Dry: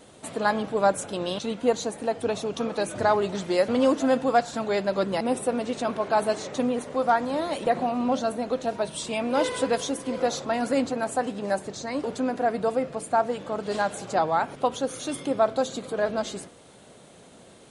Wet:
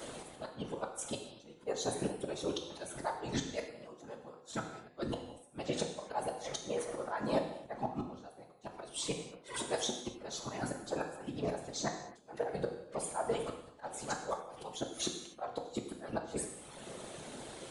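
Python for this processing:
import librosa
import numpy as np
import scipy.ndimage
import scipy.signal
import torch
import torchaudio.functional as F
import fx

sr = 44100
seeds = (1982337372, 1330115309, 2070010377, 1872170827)

y = fx.reverse_delay_fb(x, sr, ms=183, feedback_pct=42, wet_db=-10, at=(12.33, 14.55))
y = fx.dereverb_blind(y, sr, rt60_s=0.99)
y = fx.low_shelf(y, sr, hz=120.0, db=-8.5)
y = fx.auto_swell(y, sr, attack_ms=663.0)
y = fx.gate_flip(y, sr, shuts_db=-29.0, range_db=-30)
y = fx.whisperise(y, sr, seeds[0])
y = fx.rev_gated(y, sr, seeds[1], gate_ms=300, shape='falling', drr_db=3.0)
y = F.gain(torch.from_numpy(y), 5.5).numpy()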